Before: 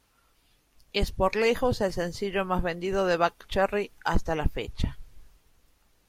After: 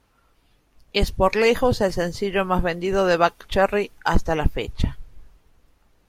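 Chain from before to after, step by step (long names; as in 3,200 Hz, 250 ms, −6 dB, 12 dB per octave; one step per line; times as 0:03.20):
one half of a high-frequency compander decoder only
level +6 dB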